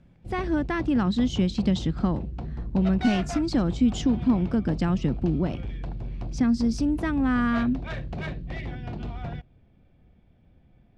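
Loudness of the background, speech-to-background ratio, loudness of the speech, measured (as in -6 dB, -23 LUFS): -35.5 LUFS, 10.0 dB, -25.5 LUFS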